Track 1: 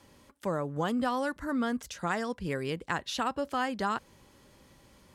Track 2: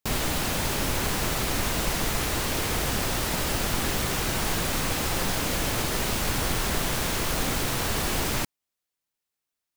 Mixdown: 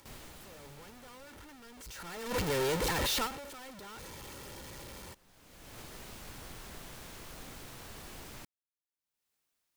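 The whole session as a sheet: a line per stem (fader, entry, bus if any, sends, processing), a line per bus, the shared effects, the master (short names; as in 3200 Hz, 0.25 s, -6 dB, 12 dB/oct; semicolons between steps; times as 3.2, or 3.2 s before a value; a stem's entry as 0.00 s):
1.69 s -18.5 dB -> 2.34 s -5.5 dB -> 3.22 s -5.5 dB -> 3.49 s -14 dB, 0.00 s, no send, infinite clipping; comb 2.2 ms, depth 33%; AGC gain up to 9 dB
-12.0 dB, 0.00 s, no send, auto duck -21 dB, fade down 1.95 s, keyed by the first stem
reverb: off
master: upward compressor, threshold -53 dBFS; gate -31 dBFS, range -9 dB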